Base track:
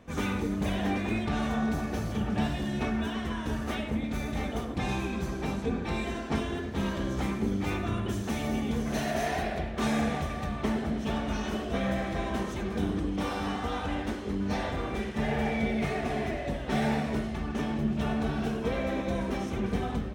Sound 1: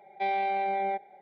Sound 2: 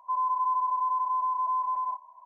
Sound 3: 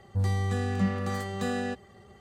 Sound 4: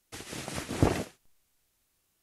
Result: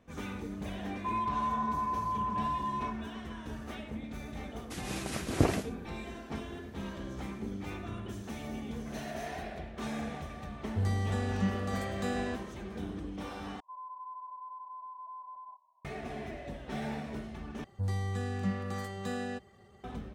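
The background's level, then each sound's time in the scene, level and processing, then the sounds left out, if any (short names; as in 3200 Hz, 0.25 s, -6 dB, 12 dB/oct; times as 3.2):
base track -9.5 dB
0.96 add 2 -6 dB
4.58 add 4 -1 dB + notch 860 Hz
10.61 add 3 -4 dB
13.6 replace with 2 -14.5 dB + LPF 1000 Hz
17.64 replace with 3 -6 dB
not used: 1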